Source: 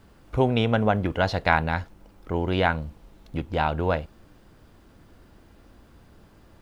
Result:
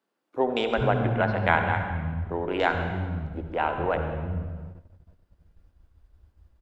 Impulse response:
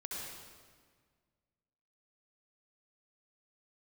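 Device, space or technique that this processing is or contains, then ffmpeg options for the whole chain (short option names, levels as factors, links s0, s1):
keyed gated reverb: -filter_complex "[0:a]asettb=1/sr,asplit=3[s0][s1][s2];[s0]atrim=end=1.174[s3];[s1]atrim=start=1.17:end=1.63,asetpts=PTS-STARTPTS,afade=t=in:d=0.004:c=qsin,afade=t=out:st=0.456:d=0.004:c=qsin,lowpass=f=5000:w=0.5412,lowpass=f=5000:w=1.3066[s4];[s2]atrim=start=1.626[s5];[s3][s4]acrossfade=d=0.004:c1=hsin:c2=qsin[s6];[s6][s5]acrossfade=d=0.004:c1=qsin:c2=hsin,acrossover=split=240[s7][s8];[s7]adelay=440[s9];[s9][s8]amix=inputs=2:normalize=0,afwtdn=0.0158,asplit=3[s10][s11][s12];[1:a]atrim=start_sample=2205[s13];[s11][s13]afir=irnorm=-1:irlink=0[s14];[s12]apad=whole_len=311141[s15];[s14][s15]sidechaingate=range=0.0224:threshold=0.00178:ratio=16:detection=peak,volume=0.841[s16];[s10][s16]amix=inputs=2:normalize=0,volume=0.596"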